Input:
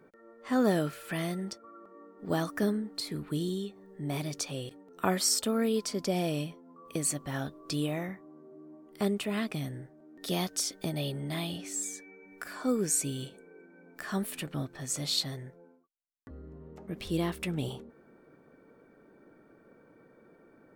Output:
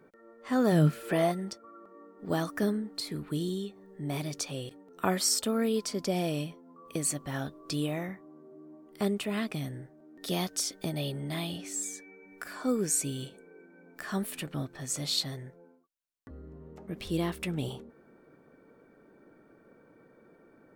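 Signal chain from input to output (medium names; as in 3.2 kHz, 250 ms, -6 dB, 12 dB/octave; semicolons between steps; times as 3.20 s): 0.71–1.31 s: peaking EQ 95 Hz -> 860 Hz +14.5 dB 1.3 oct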